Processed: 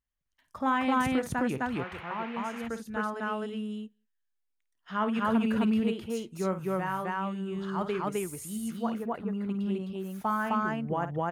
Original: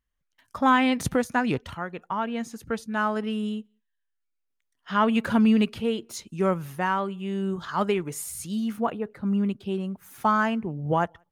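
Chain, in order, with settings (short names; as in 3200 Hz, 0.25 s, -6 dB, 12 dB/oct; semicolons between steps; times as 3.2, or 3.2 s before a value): dynamic EQ 4600 Hz, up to -5 dB, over -46 dBFS, Q 0.85; loudspeakers at several distances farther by 18 m -11 dB, 89 m 0 dB; 1.74–2.67 band noise 660–2600 Hz -38 dBFS; gain -7.5 dB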